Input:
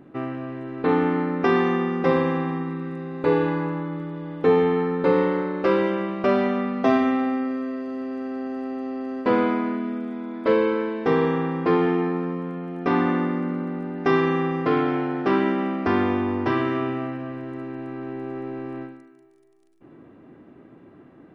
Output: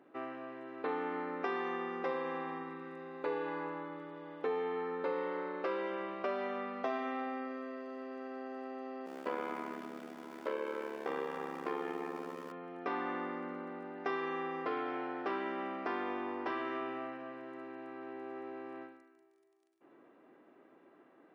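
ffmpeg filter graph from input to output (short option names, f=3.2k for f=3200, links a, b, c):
-filter_complex "[0:a]asettb=1/sr,asplit=3[a][b][c];[a]atrim=end=9.064[d];[b]atrim=start=9.06:end=12.52,asetpts=PTS-STARTPTS,afade=t=in:d=0.004:c=qsin,afade=t=out:st=3.456:d=0.004:c=qsin,aeval=exprs='val(0)+0.5*0.0178*sgn(val(0))':c=same,bandreject=f=4k:w=28,tremolo=f=71:d=0.824[e];[c]atrim=start=12.516[f];[d][e]acrossfade=d=0.004:c1=hsin:c2=qsin[g];[g][f]acrossfade=d=0.004:c1=qsin:c2=hsin,highpass=460,highshelf=f=4.4k:g=-5.5,acompressor=threshold=-28dB:ratio=2.5,volume=-7dB"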